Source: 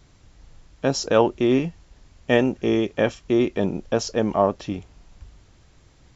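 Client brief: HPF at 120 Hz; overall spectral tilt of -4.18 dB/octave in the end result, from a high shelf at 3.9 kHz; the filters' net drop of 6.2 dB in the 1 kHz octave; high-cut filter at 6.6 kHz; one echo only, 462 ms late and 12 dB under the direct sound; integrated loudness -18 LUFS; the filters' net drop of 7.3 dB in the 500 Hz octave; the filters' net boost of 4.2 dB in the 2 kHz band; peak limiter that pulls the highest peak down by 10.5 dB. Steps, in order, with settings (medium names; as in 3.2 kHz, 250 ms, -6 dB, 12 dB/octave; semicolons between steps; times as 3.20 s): high-pass 120 Hz; low-pass 6.6 kHz; peaking EQ 500 Hz -8.5 dB; peaking EQ 1 kHz -6.5 dB; peaking EQ 2 kHz +6 dB; treble shelf 3.9 kHz +5.5 dB; peak limiter -14.5 dBFS; delay 462 ms -12 dB; trim +10 dB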